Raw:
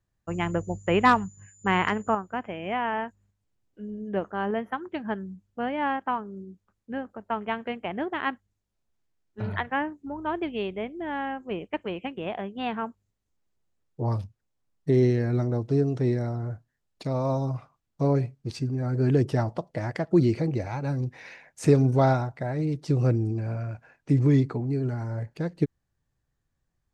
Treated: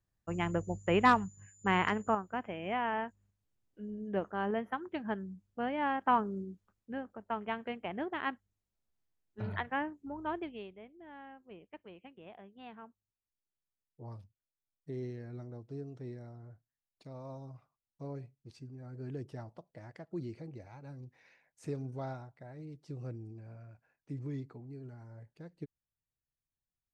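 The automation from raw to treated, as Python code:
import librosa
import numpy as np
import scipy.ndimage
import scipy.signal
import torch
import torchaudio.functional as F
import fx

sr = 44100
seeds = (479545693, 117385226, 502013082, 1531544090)

y = fx.gain(x, sr, db=fx.line((5.94, -5.5), (6.19, 3.0), (6.95, -7.0), (10.32, -7.0), (10.77, -19.5)))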